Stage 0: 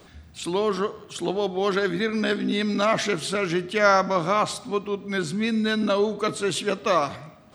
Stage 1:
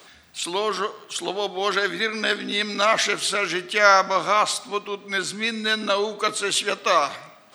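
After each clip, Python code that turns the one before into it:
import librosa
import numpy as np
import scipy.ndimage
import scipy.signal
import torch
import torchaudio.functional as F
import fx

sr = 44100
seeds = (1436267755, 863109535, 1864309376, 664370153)

y = fx.highpass(x, sr, hz=1200.0, slope=6)
y = F.gain(torch.from_numpy(y), 7.0).numpy()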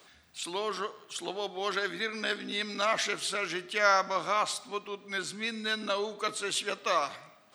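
y = fx.low_shelf(x, sr, hz=67.0, db=5.5)
y = F.gain(torch.from_numpy(y), -9.0).numpy()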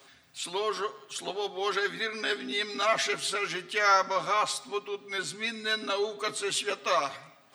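y = x + 0.72 * np.pad(x, (int(7.4 * sr / 1000.0), 0))[:len(x)]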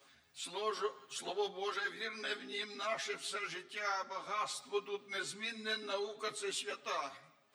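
y = fx.rider(x, sr, range_db=4, speed_s=0.5)
y = fx.ensemble(y, sr)
y = F.gain(torch.from_numpy(y), -7.0).numpy()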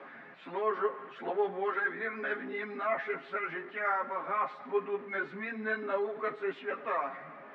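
y = x + 0.5 * 10.0 ** (-47.5 / 20.0) * np.sign(x)
y = scipy.signal.sosfilt(scipy.signal.cheby1(3, 1.0, [180.0, 1900.0], 'bandpass', fs=sr, output='sos'), y)
y = F.gain(torch.from_numpy(y), 6.5).numpy()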